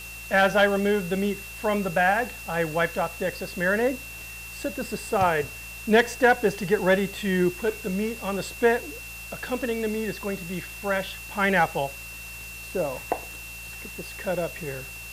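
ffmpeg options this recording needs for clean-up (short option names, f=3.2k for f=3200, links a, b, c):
-af "adeclick=t=4,bandreject=f=56.6:t=h:w=4,bandreject=f=113.2:t=h:w=4,bandreject=f=169.8:t=h:w=4,bandreject=f=2.7k:w=30,afwtdn=0.0071"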